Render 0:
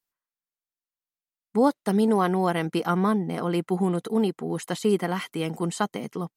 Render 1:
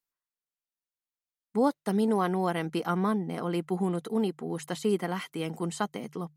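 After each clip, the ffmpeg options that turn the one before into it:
-af "bandreject=f=50:t=h:w=6,bandreject=f=100:t=h:w=6,bandreject=f=150:t=h:w=6,volume=-4.5dB"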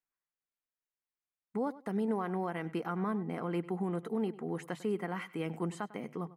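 -filter_complex "[0:a]alimiter=limit=-21.5dB:level=0:latency=1:release=176,highshelf=f=2.9k:t=q:w=1.5:g=-8,asplit=2[a][b];[b]adelay=99,lowpass=f=4.7k:p=1,volume=-17.5dB,asplit=2[c][d];[d]adelay=99,lowpass=f=4.7k:p=1,volume=0.17[e];[a][c][e]amix=inputs=3:normalize=0,volume=-3dB"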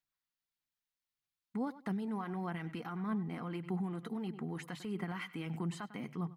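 -af "equalizer=f=125:t=o:w=1:g=6,equalizer=f=500:t=o:w=1:g=-9,equalizer=f=4k:t=o:w=1:g=5,equalizer=f=8k:t=o:w=1:g=-3,alimiter=level_in=8dB:limit=-24dB:level=0:latency=1:release=41,volume=-8dB,aphaser=in_gain=1:out_gain=1:delay=4.2:decay=0.32:speed=1.6:type=sinusoidal"

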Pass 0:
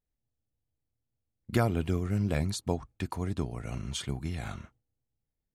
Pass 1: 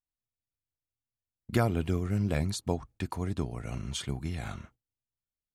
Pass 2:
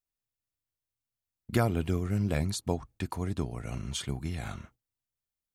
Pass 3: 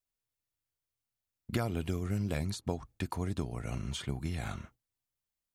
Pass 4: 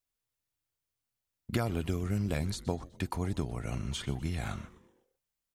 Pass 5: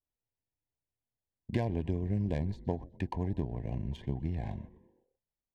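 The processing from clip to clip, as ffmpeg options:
-af "agate=range=-13dB:threshold=-55dB:ratio=16:detection=peak"
-af "highshelf=f=10k:g=4.5"
-filter_complex "[0:a]acrossover=split=2800|7400[a][b][c];[a]acompressor=threshold=-29dB:ratio=4[d];[b]acompressor=threshold=-45dB:ratio=4[e];[c]acompressor=threshold=-52dB:ratio=4[f];[d][e][f]amix=inputs=3:normalize=0"
-filter_complex "[0:a]asplit=5[a][b][c][d][e];[b]adelay=125,afreqshift=-150,volume=-18dB[f];[c]adelay=250,afreqshift=-300,volume=-24.7dB[g];[d]adelay=375,afreqshift=-450,volume=-31.5dB[h];[e]adelay=500,afreqshift=-600,volume=-38.2dB[i];[a][f][g][h][i]amix=inputs=5:normalize=0,volume=1.5dB"
-af "adynamicequalizer=threshold=0.00178:dfrequency=2100:dqfactor=1:tfrequency=2100:tqfactor=1:attack=5:release=100:ratio=0.375:range=2:mode=cutabove:tftype=bell,adynamicsmooth=sensitivity=3:basefreq=1.2k,asuperstop=centerf=1300:order=8:qfactor=2.3"

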